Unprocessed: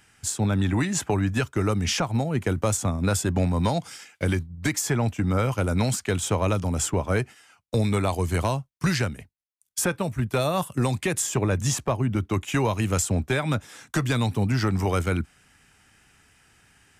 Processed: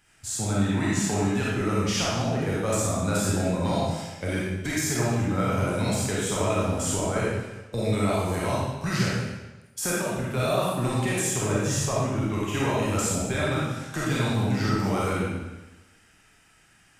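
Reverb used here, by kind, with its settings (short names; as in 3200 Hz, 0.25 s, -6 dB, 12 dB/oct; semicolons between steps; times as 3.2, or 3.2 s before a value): digital reverb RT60 1.1 s, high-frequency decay 0.95×, pre-delay 5 ms, DRR -7 dB; gain -7.5 dB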